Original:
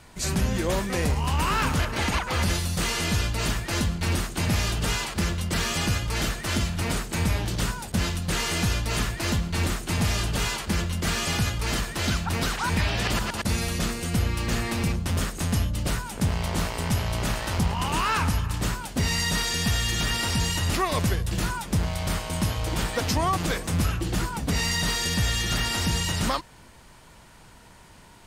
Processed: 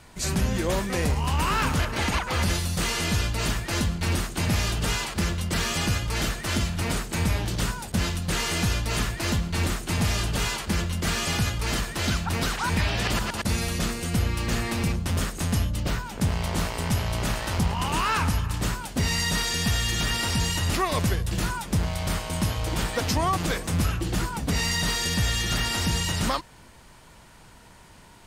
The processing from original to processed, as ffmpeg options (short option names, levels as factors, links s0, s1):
-filter_complex "[0:a]asettb=1/sr,asplit=3[s0][s1][s2];[s0]atrim=end=15.804[s3];[s1]atrim=start=15.8:end=16.21,asetpts=PTS-STARTPTS,afade=t=in:d=0.004:c=qsin,afade=t=out:st=0.406:d=0.004:c=qsin,equalizer=f=10000:w=1.2:g=-10.5[s4];[s2]atrim=start=16.206[s5];[s3][s4]acrossfade=d=0.004:c1=hsin:c2=qsin[s6];[s6][s5]acrossfade=d=0.004:c1=qsin:c2=hsin"